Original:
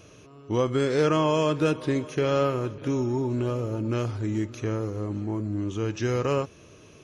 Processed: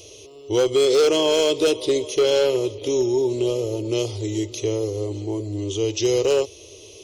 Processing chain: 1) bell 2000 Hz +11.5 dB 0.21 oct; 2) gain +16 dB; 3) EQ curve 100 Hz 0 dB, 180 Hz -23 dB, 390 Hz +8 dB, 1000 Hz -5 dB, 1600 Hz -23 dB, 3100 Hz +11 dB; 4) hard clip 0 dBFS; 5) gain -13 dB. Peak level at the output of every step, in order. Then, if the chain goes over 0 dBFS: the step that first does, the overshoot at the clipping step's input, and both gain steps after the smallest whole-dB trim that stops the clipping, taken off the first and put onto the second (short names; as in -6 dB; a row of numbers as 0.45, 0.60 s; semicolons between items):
-11.5, +4.5, +7.5, 0.0, -13.0 dBFS; step 2, 7.5 dB; step 2 +8 dB, step 5 -5 dB